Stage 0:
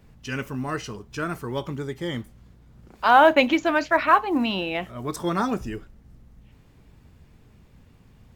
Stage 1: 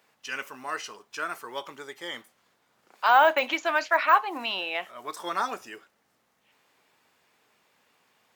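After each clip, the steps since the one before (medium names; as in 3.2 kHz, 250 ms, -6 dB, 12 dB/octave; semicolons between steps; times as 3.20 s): de-esser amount 70%; high-pass 730 Hz 12 dB/octave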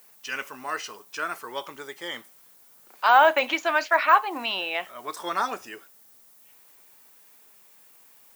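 added noise violet -57 dBFS; trim +2 dB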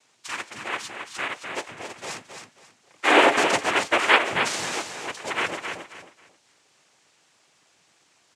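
noise-vocoded speech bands 4; feedback delay 269 ms, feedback 25%, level -7 dB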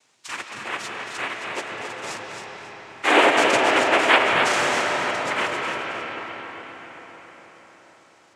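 reverberation RT60 5.4 s, pre-delay 90 ms, DRR 0.5 dB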